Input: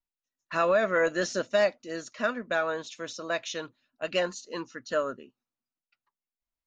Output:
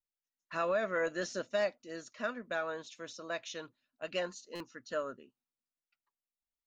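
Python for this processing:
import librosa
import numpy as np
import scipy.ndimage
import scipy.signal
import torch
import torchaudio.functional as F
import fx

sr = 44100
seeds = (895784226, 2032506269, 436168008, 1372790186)

y = fx.buffer_glitch(x, sr, at_s=(4.55,), block=256, repeats=8)
y = F.gain(torch.from_numpy(y), -8.0).numpy()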